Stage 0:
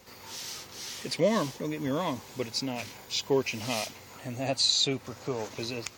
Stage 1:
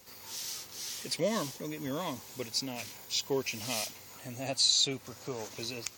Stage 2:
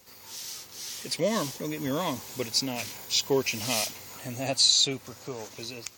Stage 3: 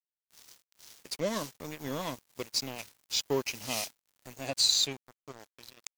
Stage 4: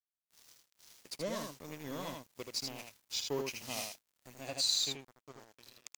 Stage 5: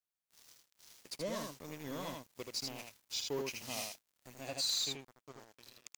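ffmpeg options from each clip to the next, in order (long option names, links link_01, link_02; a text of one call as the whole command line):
ffmpeg -i in.wav -af "highshelf=frequency=5000:gain=11.5,volume=-6dB" out.wav
ffmpeg -i in.wav -af "dynaudnorm=framelen=230:gausssize=11:maxgain=6.5dB" out.wav
ffmpeg -i in.wav -af "aeval=exprs='sgn(val(0))*max(abs(val(0))-0.0178,0)':channel_layout=same,volume=-3dB" out.wav
ffmpeg -i in.wav -af "aecho=1:1:79:0.596,volume=-7dB" out.wav
ffmpeg -i in.wav -af "asoftclip=type=tanh:threshold=-28.5dB" out.wav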